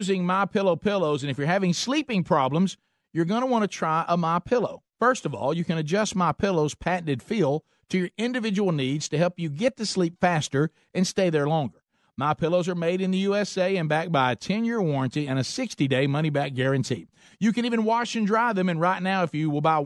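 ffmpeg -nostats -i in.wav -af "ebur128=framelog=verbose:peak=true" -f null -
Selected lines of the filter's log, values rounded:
Integrated loudness:
  I:         -24.9 LUFS
  Threshold: -34.9 LUFS
Loudness range:
  LRA:         1.3 LU
  Threshold: -45.1 LUFS
  LRA low:   -25.8 LUFS
  LRA high:  -24.5 LUFS
True peak:
  Peak:       -7.5 dBFS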